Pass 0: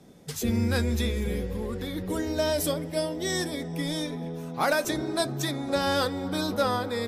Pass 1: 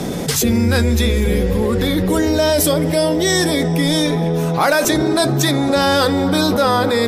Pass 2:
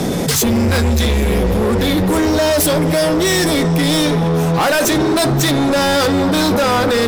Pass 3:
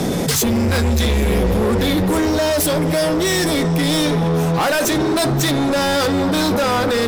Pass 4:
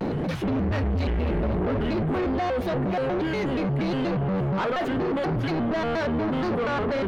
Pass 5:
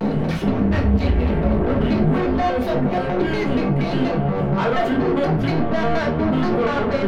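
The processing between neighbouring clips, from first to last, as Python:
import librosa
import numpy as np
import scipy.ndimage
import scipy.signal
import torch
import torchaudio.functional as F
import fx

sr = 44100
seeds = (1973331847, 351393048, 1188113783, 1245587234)

y1 = fx.hum_notches(x, sr, base_hz=50, count=5)
y1 = fx.env_flatten(y1, sr, amount_pct=70)
y1 = y1 * 10.0 ** (8.0 / 20.0)
y2 = np.clip(10.0 ** (17.0 / 20.0) * y1, -1.0, 1.0) / 10.0 ** (17.0 / 20.0)
y2 = y2 * 10.0 ** (5.0 / 20.0)
y3 = fx.rider(y2, sr, range_db=10, speed_s=0.5)
y3 = y3 * 10.0 ** (-2.5 / 20.0)
y4 = fx.air_absorb(y3, sr, metres=490.0)
y4 = 10.0 ** (-17.5 / 20.0) * np.tanh(y4 / 10.0 ** (-17.5 / 20.0))
y4 = fx.vibrato_shape(y4, sr, shape='square', rate_hz=4.2, depth_cents=250.0)
y4 = y4 * 10.0 ** (-4.0 / 20.0)
y5 = fx.room_shoebox(y4, sr, seeds[0], volume_m3=330.0, walls='furnished', distance_m=1.6)
y5 = y5 * 10.0 ** (2.5 / 20.0)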